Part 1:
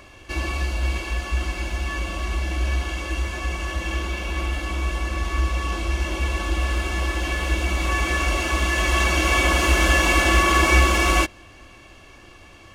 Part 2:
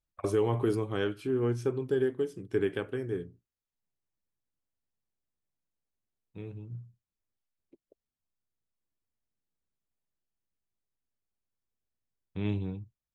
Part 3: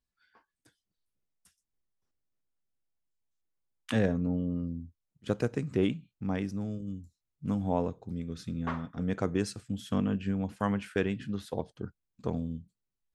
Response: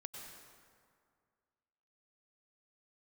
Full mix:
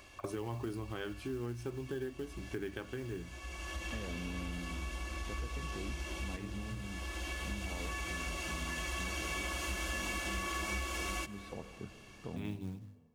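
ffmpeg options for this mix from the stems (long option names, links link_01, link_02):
-filter_complex "[0:a]highshelf=frequency=3200:gain=7,volume=-12.5dB,asplit=2[link_01][link_02];[link_02]volume=-11.5dB[link_03];[1:a]equalizer=frequency=450:width_type=o:width=0.3:gain=-10,bandreject=frequency=50:width_type=h:width=6,bandreject=frequency=100:width_type=h:width=6,bandreject=frequency=150:width_type=h:width=6,bandreject=frequency=200:width_type=h:width=6,bandreject=frequency=250:width_type=h:width=6,bandreject=frequency=300:width_type=h:width=6,acrusher=bits=6:mode=log:mix=0:aa=0.000001,volume=-1dB,asplit=2[link_04][link_05];[2:a]lowpass=4800,alimiter=limit=-22.5dB:level=0:latency=1,volume=-9.5dB,asplit=2[link_06][link_07];[link_07]volume=-3dB[link_08];[link_05]apad=whole_len=561905[link_09];[link_01][link_09]sidechaincompress=threshold=-54dB:ratio=4:attack=6.2:release=425[link_10];[3:a]atrim=start_sample=2205[link_11];[link_03][link_08]amix=inputs=2:normalize=0[link_12];[link_12][link_11]afir=irnorm=-1:irlink=0[link_13];[link_10][link_04][link_06][link_13]amix=inputs=4:normalize=0,acompressor=threshold=-38dB:ratio=3"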